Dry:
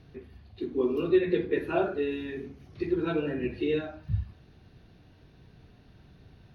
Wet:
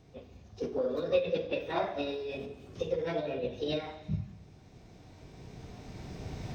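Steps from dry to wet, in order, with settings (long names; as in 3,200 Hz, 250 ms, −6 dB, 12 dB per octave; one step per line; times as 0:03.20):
camcorder AGC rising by 8.2 dB per second
formants moved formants +6 semitones
reverb whose tail is shaped and stops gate 460 ms falling, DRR 11 dB
level −5 dB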